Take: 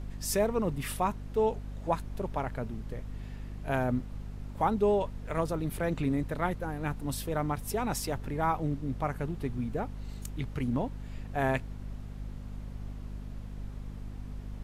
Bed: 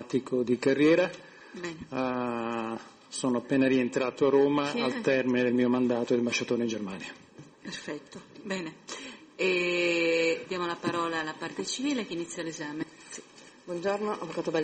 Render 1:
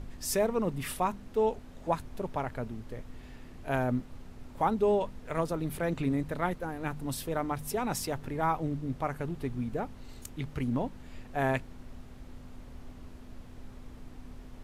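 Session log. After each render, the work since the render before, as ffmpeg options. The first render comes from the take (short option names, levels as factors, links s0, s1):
-af "bandreject=f=50:t=h:w=4,bandreject=f=100:t=h:w=4,bandreject=f=150:t=h:w=4,bandreject=f=200:t=h:w=4"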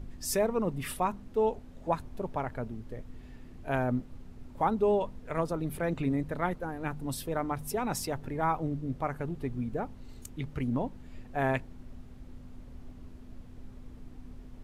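-af "afftdn=nr=6:nf=-49"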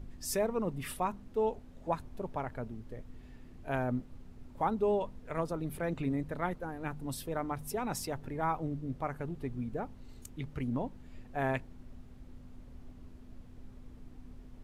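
-af "volume=0.668"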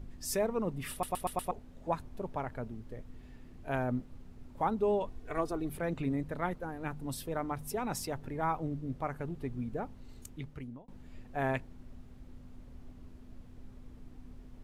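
-filter_complex "[0:a]asettb=1/sr,asplit=3[s0][s1][s2];[s0]atrim=end=5.074[s3];[s1]atrim=start=5.07:end=5.7,asetpts=PTS-STARTPTS,afade=t=in:d=0.004:c=qsin,afade=t=out:st=0.626:d=0.004:c=qsin,aecho=1:1:2.7:0.65,atrim=end_sample=27783[s4];[s2]atrim=start=5.696[s5];[s3][s4]acrossfade=d=0.004:c1=hsin:c2=qsin[s6];[s6][s5]acrossfade=d=0.004:c1=qsin:c2=hsin,asplit=7[s7][s8][s9][s10][s11][s12][s13];[s7]atrim=end=1.032[s14];[s8]atrim=start=0.908:end=1.032[s15];[s9]atrim=start=0.908:end=1.032[s16];[s10]atrim=start=0.908:end=1.032[s17];[s11]atrim=start=0.908:end=1.032[s18];[s12]atrim=start=1.508:end=10.88,asetpts=PTS-STARTPTS,afade=t=out:st=8.762:d=0.61[s19];[s13]atrim=start=10.88,asetpts=PTS-STARTPTS,afade=t=in:d=0.004:c=hsin[s20];[s14][s15]acrossfade=d=0.004:c1=hsin:c2=hsin[s21];[s21][s16]acrossfade=d=0.004:c1=hsin:c2=hsin[s22];[s22][s17]acrossfade=d=0.004:c1=hsin:c2=hsin[s23];[s23][s18]acrossfade=d=0.004:c1=hsin:c2=hsin[s24];[s19][s20]concat=n=2:v=0:a=1[s25];[s24][s25]acrossfade=d=0.004:c1=hsin:c2=hsin"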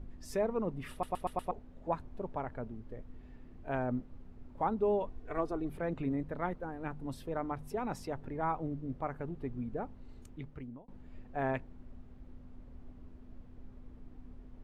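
-af "lowpass=f=1600:p=1,equalizer=f=130:w=1.2:g=-3"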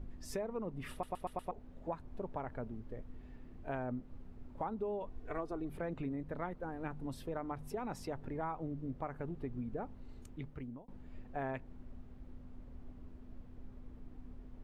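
-af "acompressor=threshold=0.0158:ratio=5"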